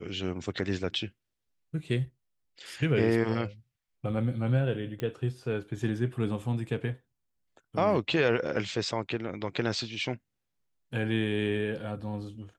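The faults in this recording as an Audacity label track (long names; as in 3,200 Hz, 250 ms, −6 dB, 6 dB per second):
5.000000	5.000000	click −21 dBFS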